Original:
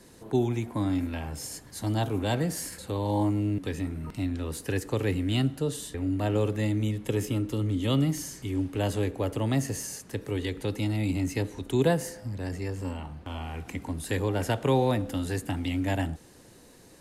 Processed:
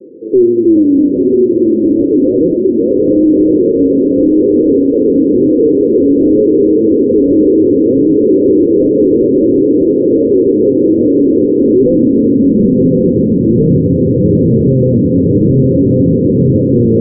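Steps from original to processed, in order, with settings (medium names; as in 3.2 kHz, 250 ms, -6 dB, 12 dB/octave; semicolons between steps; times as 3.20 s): ever faster or slower copies 277 ms, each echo -2 st, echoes 2; hum notches 50/100/150/200/250 Hz; on a send: echo that smears into a reverb 1040 ms, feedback 70%, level -3 dB; on the sum: high-pass sweep 350 Hz -> 150 Hz, 11.07–13.81 s; saturation -19 dBFS, distortion -13 dB; steep low-pass 540 Hz 96 dB/octave; loudness maximiser +19 dB; trim -1 dB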